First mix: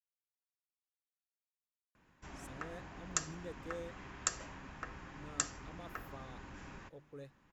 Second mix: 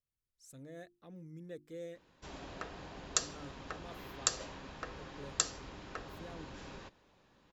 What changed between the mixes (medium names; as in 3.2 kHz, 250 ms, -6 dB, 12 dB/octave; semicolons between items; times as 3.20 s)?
speech: entry -1.95 s; background: add graphic EQ 500/2000/4000 Hz +8/-3/+11 dB